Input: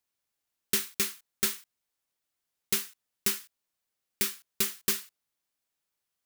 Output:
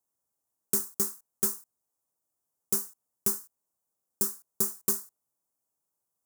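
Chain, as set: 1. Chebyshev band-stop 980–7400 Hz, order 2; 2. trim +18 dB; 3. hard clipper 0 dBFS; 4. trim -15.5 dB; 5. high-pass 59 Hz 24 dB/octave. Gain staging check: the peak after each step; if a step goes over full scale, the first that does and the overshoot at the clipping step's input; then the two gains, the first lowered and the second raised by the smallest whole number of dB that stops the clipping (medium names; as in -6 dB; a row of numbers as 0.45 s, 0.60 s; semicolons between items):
-12.0 dBFS, +6.0 dBFS, 0.0 dBFS, -15.5 dBFS, -13.5 dBFS; step 2, 6.0 dB; step 2 +12 dB, step 4 -9.5 dB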